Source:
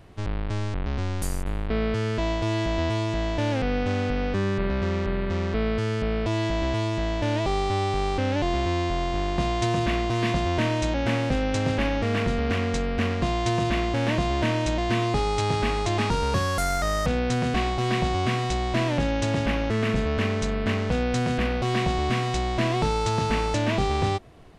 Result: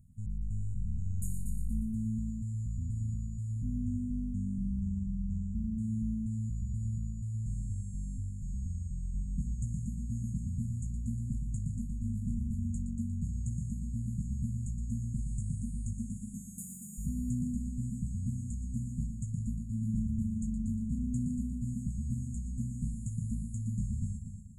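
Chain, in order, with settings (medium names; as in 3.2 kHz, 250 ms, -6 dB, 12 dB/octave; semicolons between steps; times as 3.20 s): 15.93–16.98 s: high-pass 190 Hz 24 dB/octave; FFT band-reject 250–6600 Hz; on a send: multi-head delay 118 ms, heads first and second, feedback 49%, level -9.5 dB; on the sum: trim -8 dB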